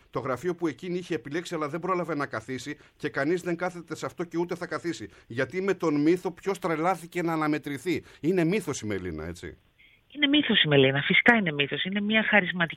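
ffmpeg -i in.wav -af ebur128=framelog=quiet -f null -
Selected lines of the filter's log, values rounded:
Integrated loudness:
  I:         -26.5 LUFS
  Threshold: -36.8 LUFS
Loudness range:
  LRA:         7.9 LU
  Threshold: -47.6 LUFS
  LRA low:   -31.4 LUFS
  LRA high:  -23.5 LUFS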